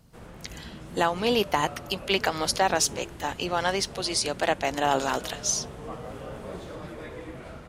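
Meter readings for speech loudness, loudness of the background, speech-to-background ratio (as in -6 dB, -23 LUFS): -26.5 LUFS, -41.0 LUFS, 14.5 dB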